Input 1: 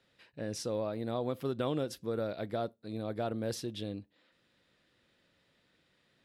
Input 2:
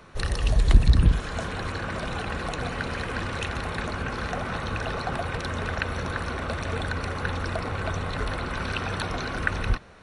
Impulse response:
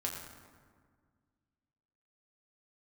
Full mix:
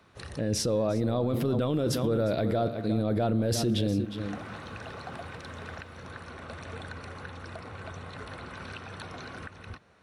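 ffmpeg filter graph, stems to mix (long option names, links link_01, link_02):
-filter_complex "[0:a]lowshelf=frequency=340:gain=8.5,dynaudnorm=framelen=140:gausssize=7:maxgain=11dB,volume=0.5dB,asplit=4[link_01][link_02][link_03][link_04];[link_02]volume=-16.5dB[link_05];[link_03]volume=-13dB[link_06];[1:a]highpass=frequency=72:width=0.5412,highpass=frequency=72:width=1.3066,alimiter=limit=-17dB:level=0:latency=1:release=441,volume=-10.5dB[link_07];[link_04]apad=whole_len=442217[link_08];[link_07][link_08]sidechaincompress=threshold=-38dB:ratio=8:attack=16:release=250[link_09];[2:a]atrim=start_sample=2205[link_10];[link_05][link_10]afir=irnorm=-1:irlink=0[link_11];[link_06]aecho=0:1:356:1[link_12];[link_01][link_09][link_11][link_12]amix=inputs=4:normalize=0,alimiter=limit=-19.5dB:level=0:latency=1:release=11"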